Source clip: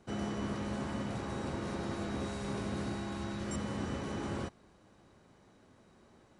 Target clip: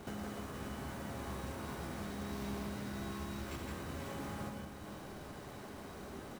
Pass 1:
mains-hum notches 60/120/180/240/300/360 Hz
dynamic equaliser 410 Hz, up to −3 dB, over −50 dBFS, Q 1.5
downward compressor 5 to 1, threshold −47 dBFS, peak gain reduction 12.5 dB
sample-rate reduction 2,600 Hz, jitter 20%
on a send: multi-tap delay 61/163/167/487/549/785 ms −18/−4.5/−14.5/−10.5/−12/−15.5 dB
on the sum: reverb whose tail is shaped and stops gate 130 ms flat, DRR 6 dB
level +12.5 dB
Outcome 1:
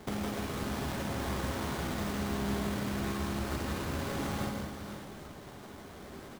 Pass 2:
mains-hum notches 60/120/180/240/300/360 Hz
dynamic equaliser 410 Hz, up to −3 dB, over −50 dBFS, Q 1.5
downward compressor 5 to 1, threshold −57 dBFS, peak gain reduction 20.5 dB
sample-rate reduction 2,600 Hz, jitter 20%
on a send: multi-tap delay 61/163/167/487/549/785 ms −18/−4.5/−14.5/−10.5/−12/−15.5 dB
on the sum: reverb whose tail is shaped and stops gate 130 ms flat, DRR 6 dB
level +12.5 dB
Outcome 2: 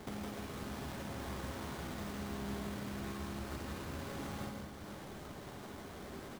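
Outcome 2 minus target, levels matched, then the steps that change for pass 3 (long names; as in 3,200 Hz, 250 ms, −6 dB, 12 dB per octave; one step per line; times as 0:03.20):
sample-rate reduction: distortion +7 dB
change: sample-rate reduction 9,700 Hz, jitter 20%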